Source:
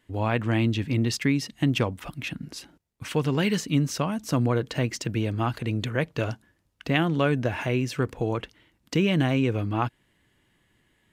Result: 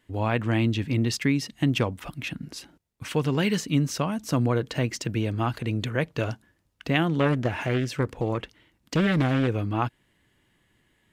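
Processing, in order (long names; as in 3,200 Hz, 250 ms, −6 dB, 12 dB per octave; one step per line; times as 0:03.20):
0:07.20–0:09.48: highs frequency-modulated by the lows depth 0.49 ms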